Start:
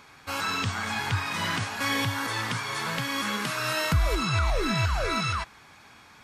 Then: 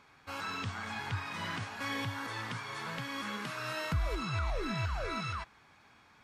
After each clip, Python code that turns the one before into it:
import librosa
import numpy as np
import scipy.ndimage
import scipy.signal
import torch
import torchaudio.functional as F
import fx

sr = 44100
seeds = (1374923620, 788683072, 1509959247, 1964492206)

y = fx.high_shelf(x, sr, hz=5500.0, db=-9.0)
y = y * 10.0 ** (-8.5 / 20.0)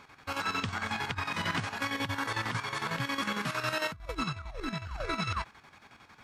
y = fx.over_compress(x, sr, threshold_db=-37.0, ratio=-0.5)
y = fx.chopper(y, sr, hz=11.0, depth_pct=60, duty_pct=60)
y = y * 10.0 ** (6.0 / 20.0)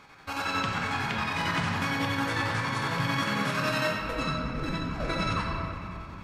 y = fx.room_shoebox(x, sr, seeds[0], volume_m3=130.0, walls='hard', distance_m=0.53)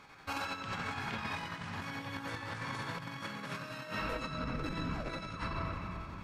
y = fx.over_compress(x, sr, threshold_db=-32.0, ratio=-0.5)
y = y * 10.0 ** (-6.5 / 20.0)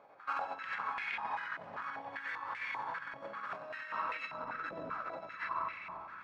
y = fx.filter_held_bandpass(x, sr, hz=5.1, low_hz=610.0, high_hz=2200.0)
y = y * 10.0 ** (8.5 / 20.0)